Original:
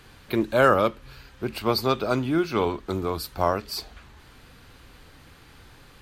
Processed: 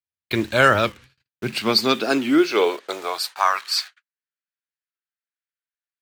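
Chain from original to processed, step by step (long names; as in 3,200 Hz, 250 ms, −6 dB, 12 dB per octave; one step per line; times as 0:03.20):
noise gate −40 dBFS, range −54 dB
flat-topped bell 3,700 Hz +10 dB 2.8 octaves
in parallel at −5 dB: bit-depth reduction 6 bits, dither none
on the sum: high-pass filter sweep 81 Hz → 1,400 Hz, 0:00.86–0:03.86
wow of a warped record 45 rpm, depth 160 cents
level −4 dB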